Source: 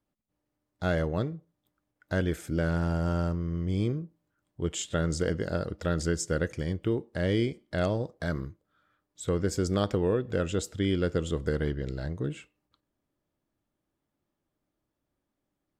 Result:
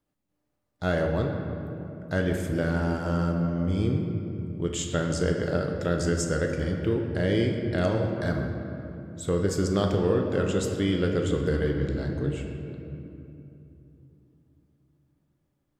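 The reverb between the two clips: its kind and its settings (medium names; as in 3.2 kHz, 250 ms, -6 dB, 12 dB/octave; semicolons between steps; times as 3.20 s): simulated room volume 130 m³, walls hard, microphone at 0.33 m; trim +1 dB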